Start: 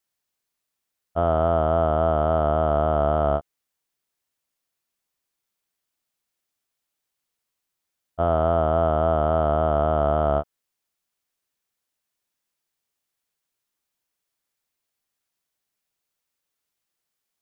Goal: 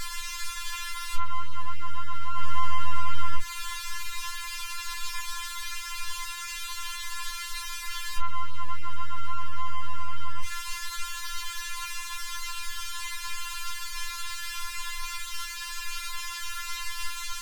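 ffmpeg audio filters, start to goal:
-filter_complex "[0:a]aeval=exprs='val(0)+0.5*0.0447*sgn(val(0))':c=same,asettb=1/sr,asplit=3[a][b][c];[a]atrim=end=2.334[d];[b]atrim=start=2.33:end=3.36,asetpts=PTS-STARTPTS,afade=t=in:d=0.004:c=qsin,afade=t=out:st=1.026:d=0.004:c=qsin,equalizer=f=220:w=0.91:g=-13.5[e];[c]atrim=start=3.356[f];[d][e]acrossfade=d=0.004:c1=hsin:c2=qsin[g];[g][f]acrossfade=d=0.004:c1=qsin:c2=hsin,alimiter=limit=-16.5dB:level=0:latency=1:release=150,afftfilt=real='re*(1-between(b*sr/4096,230,940))':imag='im*(1-between(b*sr/4096,230,940))':win_size=4096:overlap=0.75,aemphasis=mode=reproduction:type=bsi,afftfilt=real='re*4*eq(mod(b,16),0)':imag='im*4*eq(mod(b,16),0)':win_size=2048:overlap=0.75,volume=7.5dB"

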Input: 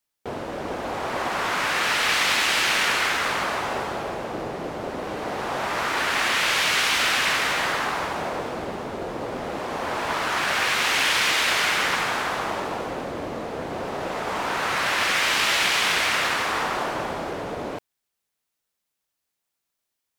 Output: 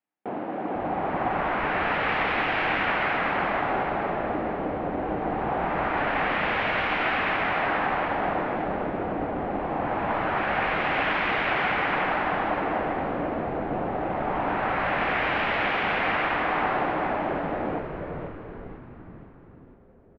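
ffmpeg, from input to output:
-filter_complex "[0:a]highpass=150,equalizer=f=200:t=q:w=4:g=8,equalizer=f=300:t=q:w=4:g=9,equalizer=f=760:t=q:w=4:g=9,lowpass=f=2.5k:w=0.5412,lowpass=f=2.5k:w=1.3066,asplit=8[a][b][c][d][e][f][g][h];[b]adelay=489,afreqshift=-140,volume=-5.5dB[i];[c]adelay=978,afreqshift=-280,volume=-10.7dB[j];[d]adelay=1467,afreqshift=-420,volume=-15.9dB[k];[e]adelay=1956,afreqshift=-560,volume=-21.1dB[l];[f]adelay=2445,afreqshift=-700,volume=-26.3dB[m];[g]adelay=2934,afreqshift=-840,volume=-31.5dB[n];[h]adelay=3423,afreqshift=-980,volume=-36.7dB[o];[a][i][j][k][l][m][n][o]amix=inputs=8:normalize=0,volume=-4dB"

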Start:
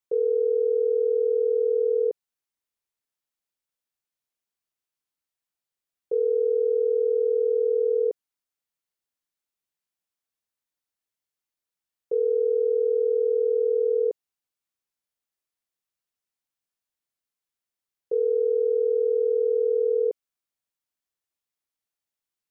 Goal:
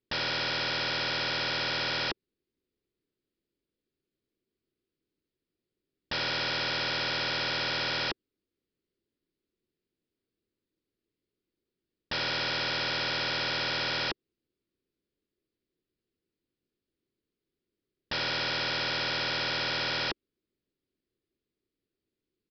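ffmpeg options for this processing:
-af "lowshelf=f=550:t=q:w=3:g=13.5,aresample=11025,aeval=exprs='0.0501*(abs(mod(val(0)/0.0501+3,4)-2)-1)':c=same,aresample=44100"

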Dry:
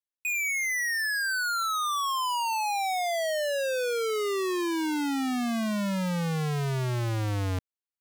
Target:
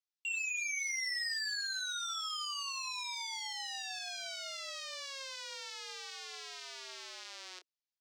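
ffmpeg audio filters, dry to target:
-filter_complex "[0:a]asoftclip=type=hard:threshold=-33dB,bandpass=f=5k:t=q:w=1.7:csg=0,adynamicsmooth=sensitivity=7:basefreq=4.9k,afreqshift=270,asplit=2[a][b];[b]adelay=28,volume=-8.5dB[c];[a][c]amix=inputs=2:normalize=0,volume=8dB"

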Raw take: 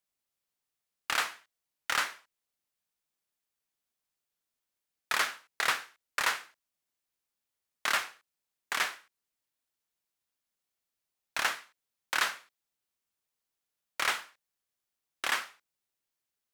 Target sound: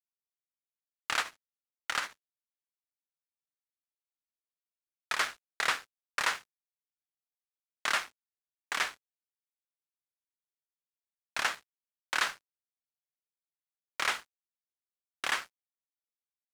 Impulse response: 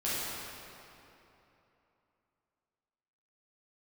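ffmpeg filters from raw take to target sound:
-filter_complex "[0:a]lowpass=10k,aeval=exprs='sgn(val(0))*max(abs(val(0))-0.00473,0)':c=same,asettb=1/sr,asplit=3[a][b][c];[a]atrim=end=1.204[d];[b]atrim=start=1.2:end=5.19,asetpts=PTS-STARTPTS,afade=t=in:d=0.004:c=qsin,afade=t=out:st=3.986:d=0.004:c=qsin,tremolo=f=13:d=0.55[e];[c]atrim=start=5.186[f];[d][e]acrossfade=d=0.004:c1=hsin:c2=qsin[g];[g][f]acrossfade=d=0.004:c1=qsin:c2=hsin"

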